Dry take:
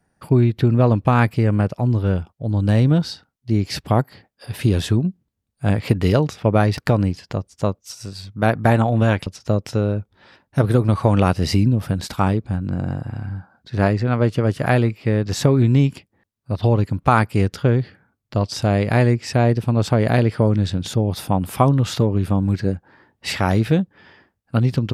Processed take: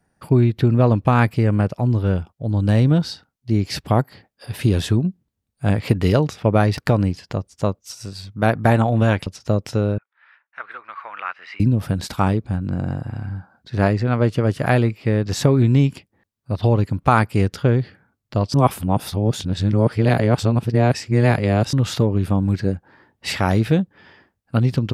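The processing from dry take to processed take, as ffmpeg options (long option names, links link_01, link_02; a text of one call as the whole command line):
ffmpeg -i in.wav -filter_complex "[0:a]asettb=1/sr,asplit=3[link_01][link_02][link_03];[link_01]atrim=end=9.984[link_04];[link_02]atrim=start=9.98:end=11.6,asetpts=PTS-STARTPTS,afade=type=in:duration=0.004:curve=qsin,afade=type=out:start_time=1.616:duration=0.004:curve=qsin,asuperpass=centerf=1700:order=4:qfactor=1.4[link_05];[link_03]atrim=start=11.596[link_06];[link_04][link_05]acrossfade=duration=0.004:curve1=hsin:curve2=qsin[link_07];[link_07][link_06]acrossfade=duration=0.004:curve1=qsin:curve2=hsin,asplit=3[link_08][link_09][link_10];[link_08]atrim=end=18.542[link_11];[link_09]atrim=start=18.538:end=21.732,asetpts=PTS-STARTPTS,areverse[link_12];[link_10]atrim=start=21.728[link_13];[link_11][link_12]acrossfade=duration=0.004:curve1=hsin:curve2=hsin[link_14];[link_14][link_13]acrossfade=duration=0.004:curve1=hsin:curve2=hsin" out.wav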